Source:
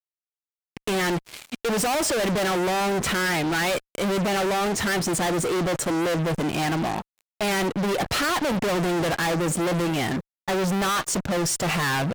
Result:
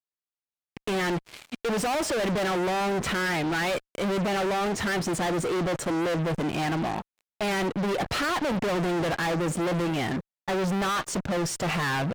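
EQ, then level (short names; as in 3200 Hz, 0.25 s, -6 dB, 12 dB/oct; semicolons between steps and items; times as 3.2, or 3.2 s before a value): high shelf 6300 Hz -8.5 dB; -2.5 dB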